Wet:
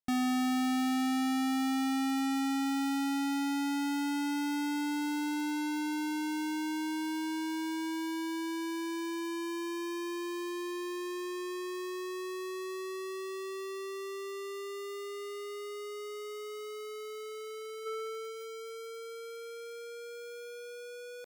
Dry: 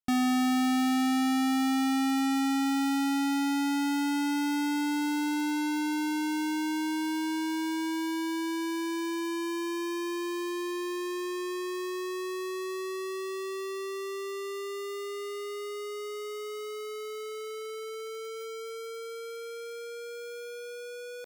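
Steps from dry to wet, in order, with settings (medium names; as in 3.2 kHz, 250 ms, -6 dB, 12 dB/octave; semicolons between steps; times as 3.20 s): 17.85–18.31 s: peaking EQ 930 Hz +15 dB -> +3 dB 1.8 oct; trim -4 dB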